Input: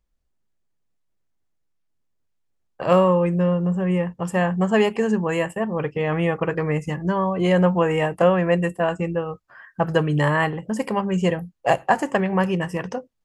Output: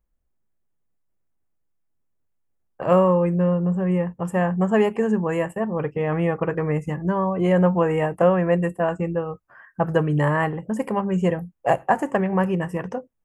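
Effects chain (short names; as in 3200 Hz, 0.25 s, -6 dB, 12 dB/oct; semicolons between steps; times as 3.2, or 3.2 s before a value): bell 4400 Hz -14 dB 1.4 oct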